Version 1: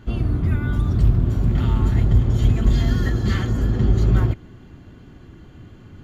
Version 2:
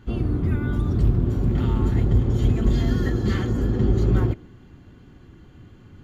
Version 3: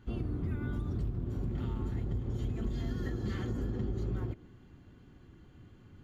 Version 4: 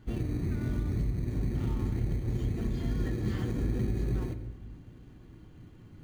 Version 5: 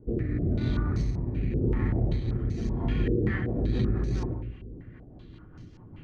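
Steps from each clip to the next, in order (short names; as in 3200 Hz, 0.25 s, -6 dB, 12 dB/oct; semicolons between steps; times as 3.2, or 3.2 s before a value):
notch 640 Hz, Q 12; dynamic EQ 380 Hz, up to +7 dB, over -36 dBFS, Q 0.7; gain -4 dB
compressor, threshold -22 dBFS, peak gain reduction 9.5 dB; gain -8.5 dB
in parallel at -7 dB: sample-and-hold 21×; on the sum: shoebox room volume 1100 m³, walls mixed, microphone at 0.54 m
rotary speaker horn 0.9 Hz, later 5 Hz, at 2.71; stepped low-pass 5.2 Hz 460–5500 Hz; gain +4.5 dB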